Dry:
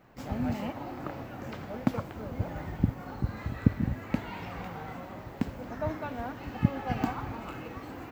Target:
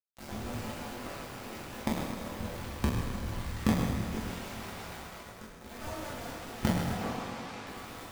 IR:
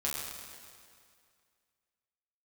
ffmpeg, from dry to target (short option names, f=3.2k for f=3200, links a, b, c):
-filter_complex "[0:a]asettb=1/sr,asplit=3[a][b][c];[a]atrim=end=5.004[d];[b]atrim=start=5:end=5.64,asetpts=PTS-STARTPTS,afade=t=in:d=0.004:c=qsin,afade=t=out:st=0.636:d=0.004:c=qsin,acompressor=threshold=-39dB:ratio=6[e];[c]atrim=start=5.636[f];[d][e]acrossfade=d=0.004:c1=hsin:c2=qsin[g];[g][f]acrossfade=d=0.004:c1=qsin:c2=hsin,flanger=delay=18:depth=5:speed=2.3,acrusher=bits=4:dc=4:mix=0:aa=0.000001,asettb=1/sr,asplit=3[h][i][j];[h]atrim=end=2.464[k];[i]atrim=start=2.46:end=3.29,asetpts=PTS-STARTPTS,afade=t=in:d=0.004:c=qsin,afade=t=out:st=0.826:d=0.004:c=qsin,afreqshift=-25[l];[j]atrim=start=3.286[m];[k][l]acrossfade=d=0.004:c1=hsin:c2=qsin[n];[n][m]acrossfade=d=0.004:c1=qsin:c2=hsin,asettb=1/sr,asplit=3[o][p][q];[o]atrim=end=6.934[r];[p]atrim=start=6.93:end=7.67,asetpts=PTS-STARTPTS,afade=t=in:d=0.004:c=qsin,afade=t=out:st=0.736:d=0.004:c=qsin,highpass=120,lowpass=6.5k[s];[q]atrim=start=7.666[t];[r][s]acrossfade=d=0.004:c1=hsin:c2=qsin[u];[u][t]acrossfade=d=0.004:c1=qsin:c2=hsin[v];[1:a]atrim=start_sample=2205[w];[v][w]afir=irnorm=-1:irlink=0,volume=-3dB"